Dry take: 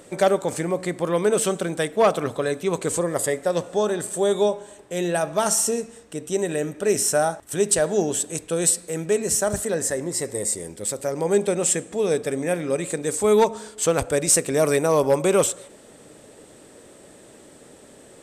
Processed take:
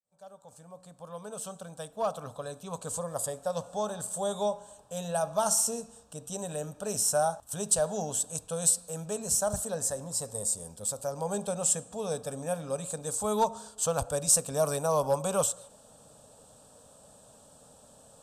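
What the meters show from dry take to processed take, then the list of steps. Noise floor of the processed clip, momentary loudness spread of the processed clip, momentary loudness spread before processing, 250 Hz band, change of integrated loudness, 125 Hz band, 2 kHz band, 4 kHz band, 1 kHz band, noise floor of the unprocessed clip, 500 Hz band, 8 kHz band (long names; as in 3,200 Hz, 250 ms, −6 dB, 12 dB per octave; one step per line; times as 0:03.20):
−57 dBFS, 14 LU, 7 LU, −12.5 dB, −7.5 dB, −7.5 dB, −15.0 dB, −7.5 dB, −6.0 dB, −48 dBFS, −11.0 dB, −5.0 dB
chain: fade in at the beginning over 4.20 s
phaser with its sweep stopped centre 850 Hz, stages 4
level −4 dB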